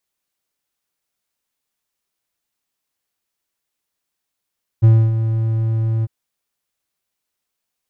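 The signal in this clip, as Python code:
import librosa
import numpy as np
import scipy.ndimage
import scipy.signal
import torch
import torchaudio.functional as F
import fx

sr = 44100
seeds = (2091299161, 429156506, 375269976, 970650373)

y = fx.adsr_tone(sr, wave='triangle', hz=112.0, attack_ms=23.0, decay_ms=270.0, sustain_db=-10.0, held_s=1.22, release_ms=31.0, level_db=-3.5)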